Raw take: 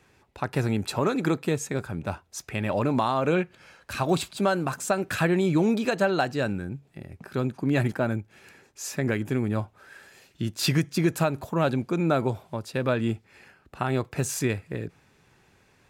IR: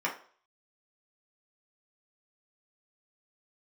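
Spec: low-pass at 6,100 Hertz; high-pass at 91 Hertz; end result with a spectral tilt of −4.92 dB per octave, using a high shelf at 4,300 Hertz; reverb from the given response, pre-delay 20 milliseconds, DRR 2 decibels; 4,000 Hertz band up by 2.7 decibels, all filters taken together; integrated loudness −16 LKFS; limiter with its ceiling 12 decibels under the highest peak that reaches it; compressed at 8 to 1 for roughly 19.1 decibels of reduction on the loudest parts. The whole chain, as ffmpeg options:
-filter_complex "[0:a]highpass=91,lowpass=6100,equalizer=frequency=4000:width_type=o:gain=8,highshelf=frequency=4300:gain=-7.5,acompressor=threshold=-39dB:ratio=8,alimiter=level_in=8.5dB:limit=-24dB:level=0:latency=1,volume=-8.5dB,asplit=2[link_01][link_02];[1:a]atrim=start_sample=2205,adelay=20[link_03];[link_02][link_03]afir=irnorm=-1:irlink=0,volume=-10.5dB[link_04];[link_01][link_04]amix=inputs=2:normalize=0,volume=27.5dB"

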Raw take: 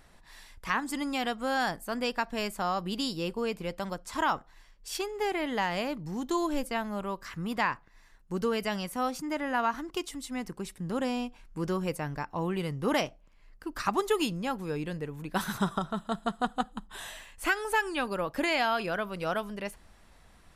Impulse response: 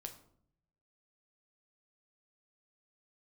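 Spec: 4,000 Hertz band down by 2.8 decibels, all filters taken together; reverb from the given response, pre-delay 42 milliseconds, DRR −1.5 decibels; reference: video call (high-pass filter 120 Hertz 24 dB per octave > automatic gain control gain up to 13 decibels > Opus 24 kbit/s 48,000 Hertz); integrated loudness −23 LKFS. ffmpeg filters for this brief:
-filter_complex "[0:a]equalizer=frequency=4000:width_type=o:gain=-4,asplit=2[link_01][link_02];[1:a]atrim=start_sample=2205,adelay=42[link_03];[link_02][link_03]afir=irnorm=-1:irlink=0,volume=5.5dB[link_04];[link_01][link_04]amix=inputs=2:normalize=0,highpass=frequency=120:width=0.5412,highpass=frequency=120:width=1.3066,dynaudnorm=maxgain=13dB,volume=2dB" -ar 48000 -c:a libopus -b:a 24k

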